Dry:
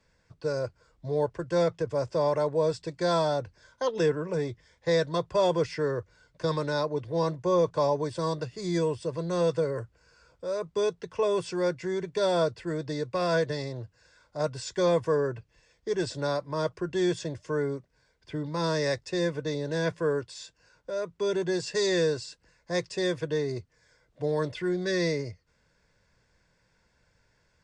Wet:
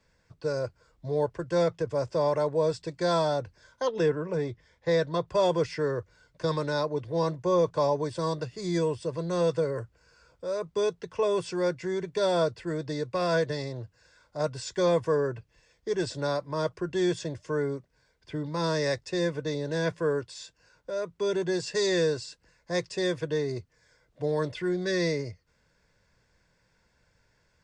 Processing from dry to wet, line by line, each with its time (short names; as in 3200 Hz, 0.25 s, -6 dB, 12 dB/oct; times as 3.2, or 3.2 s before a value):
3.89–5.28 high shelf 5800 Hz -9.5 dB